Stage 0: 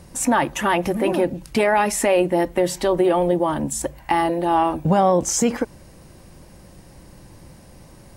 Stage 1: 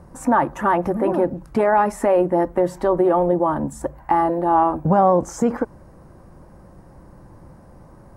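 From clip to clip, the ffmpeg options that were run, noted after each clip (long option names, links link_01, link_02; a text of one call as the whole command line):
ffmpeg -i in.wav -af "highshelf=frequency=1900:width_type=q:width=1.5:gain=-13.5" out.wav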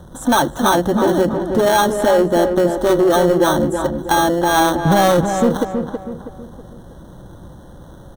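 ffmpeg -i in.wav -filter_complex "[0:a]acrossover=split=740|4800[link_01][link_02][link_03];[link_02]acrusher=samples=18:mix=1:aa=0.000001[link_04];[link_01][link_04][link_03]amix=inputs=3:normalize=0,asoftclip=type=tanh:threshold=-13dB,asplit=2[link_05][link_06];[link_06]adelay=323,lowpass=frequency=1800:poles=1,volume=-6dB,asplit=2[link_07][link_08];[link_08]adelay=323,lowpass=frequency=1800:poles=1,volume=0.43,asplit=2[link_09][link_10];[link_10]adelay=323,lowpass=frequency=1800:poles=1,volume=0.43,asplit=2[link_11][link_12];[link_12]adelay=323,lowpass=frequency=1800:poles=1,volume=0.43,asplit=2[link_13][link_14];[link_14]adelay=323,lowpass=frequency=1800:poles=1,volume=0.43[link_15];[link_05][link_07][link_09][link_11][link_13][link_15]amix=inputs=6:normalize=0,volume=5.5dB" out.wav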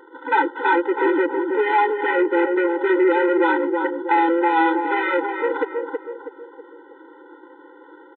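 ffmpeg -i in.wav -af "aresample=8000,asoftclip=type=tanh:threshold=-13dB,aresample=44100,lowpass=frequency=2000:width_type=q:width=3.1,afftfilt=real='re*eq(mod(floor(b*sr/1024/260),2),1)':imag='im*eq(mod(floor(b*sr/1024/260),2),1)':win_size=1024:overlap=0.75,volume=1dB" out.wav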